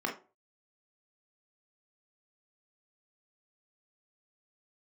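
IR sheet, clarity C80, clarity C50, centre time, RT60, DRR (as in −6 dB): 16.5 dB, 9.5 dB, 20 ms, 0.35 s, 0.5 dB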